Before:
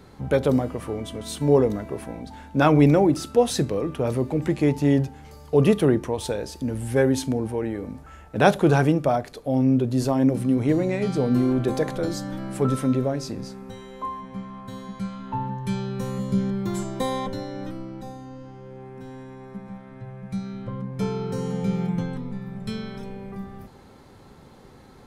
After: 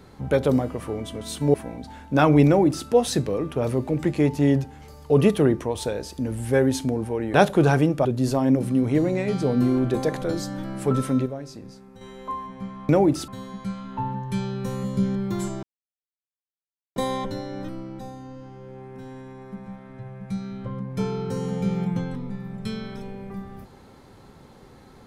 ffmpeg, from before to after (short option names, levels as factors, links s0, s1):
-filter_complex "[0:a]asplit=9[s0][s1][s2][s3][s4][s5][s6][s7][s8];[s0]atrim=end=1.542[s9];[s1]atrim=start=1.968:end=7.772[s10];[s2]atrim=start=8.398:end=9.112[s11];[s3]atrim=start=9.788:end=13,asetpts=PTS-STARTPTS,afade=t=out:st=3.002:d=0.21:c=log:silence=0.375837[s12];[s4]atrim=start=13:end=13.75,asetpts=PTS-STARTPTS,volume=0.376[s13];[s5]atrim=start=13.75:end=14.632,asetpts=PTS-STARTPTS,afade=t=in:d=0.21:c=log:silence=0.375837[s14];[s6]atrim=start=2.898:end=3.292[s15];[s7]atrim=start=14.628:end=16.98,asetpts=PTS-STARTPTS,afade=t=out:st=2.348:d=0.004:c=hsin,apad=pad_dur=1.33[s16];[s8]atrim=start=16.98,asetpts=PTS-STARTPTS,afade=t=in:d=0.004:c=hsin[s17];[s9][s10]acrossfade=d=0.004:c1=hsin:c2=hsin[s18];[s18][s11]acrossfade=d=0.004:c1=hsin:c2=hsin[s19];[s12][s13][s14]concat=n=3:v=0:a=1[s20];[s19][s20]acrossfade=d=0.004:c1=hsin:c2=hsin[s21];[s21][s15]acrossfade=d=0.004:c1=hsin:c2=hsin[s22];[s16][s17]concat=n=2:v=0:a=1[s23];[s22][s23]acrossfade=d=0.004:c1=hsin:c2=hsin"